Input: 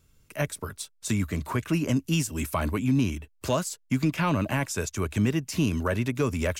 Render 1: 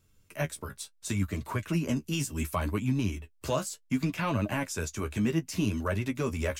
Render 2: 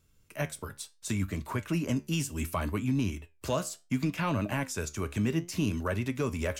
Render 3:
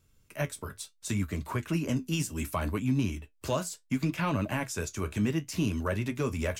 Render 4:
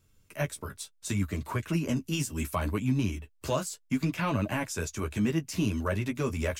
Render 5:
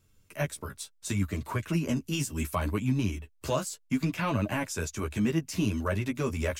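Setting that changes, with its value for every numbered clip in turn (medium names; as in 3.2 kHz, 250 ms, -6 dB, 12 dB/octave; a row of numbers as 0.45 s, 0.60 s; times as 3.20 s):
flange, regen: +27%, +73%, -54%, -17%, +5%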